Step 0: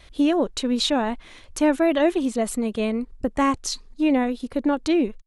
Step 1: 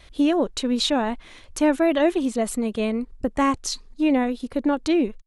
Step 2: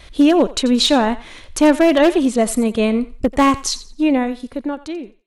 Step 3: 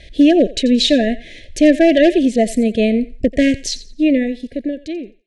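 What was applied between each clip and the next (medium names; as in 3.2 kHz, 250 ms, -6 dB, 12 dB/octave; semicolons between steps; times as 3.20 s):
no audible change
fade out at the end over 1.74 s; wavefolder -13 dBFS; thinning echo 87 ms, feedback 26%, high-pass 620 Hz, level -15.5 dB; trim +7.5 dB
brick-wall FIR band-stop 710–1600 Hz; distance through air 66 m; trim +2 dB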